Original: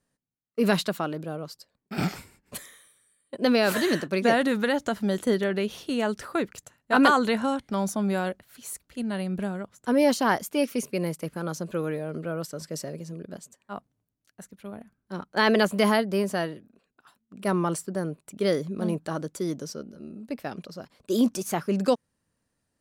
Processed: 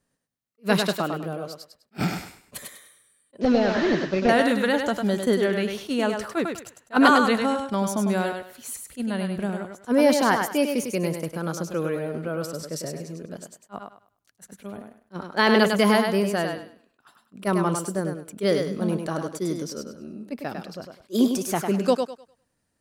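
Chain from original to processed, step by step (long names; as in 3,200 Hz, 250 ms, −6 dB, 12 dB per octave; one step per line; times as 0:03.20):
0:03.41–0:04.29: linear delta modulator 32 kbit/s, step −38.5 dBFS
on a send: feedback echo with a high-pass in the loop 101 ms, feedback 27%, high-pass 230 Hz, level −5 dB
on the sum: level that may rise only so fast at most 470 dB per second
level +2 dB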